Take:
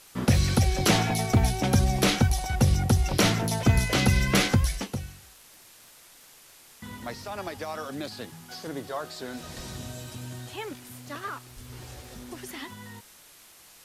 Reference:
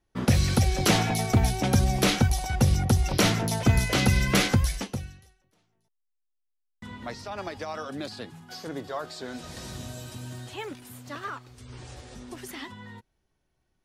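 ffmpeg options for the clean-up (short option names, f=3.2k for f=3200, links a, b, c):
-filter_complex "[0:a]adeclick=t=4,asplit=3[a][b][c];[a]afade=t=out:st=9.56:d=0.02[d];[b]highpass=f=140:w=0.5412,highpass=f=140:w=1.3066,afade=t=in:st=9.56:d=0.02,afade=t=out:st=9.68:d=0.02[e];[c]afade=t=in:st=9.68:d=0.02[f];[d][e][f]amix=inputs=3:normalize=0,asplit=3[g][h][i];[g]afade=t=out:st=11.55:d=0.02[j];[h]highpass=f=140:w=0.5412,highpass=f=140:w=1.3066,afade=t=in:st=11.55:d=0.02,afade=t=out:st=11.67:d=0.02[k];[i]afade=t=in:st=11.67:d=0.02[l];[j][k][l]amix=inputs=3:normalize=0,afwtdn=0.0028"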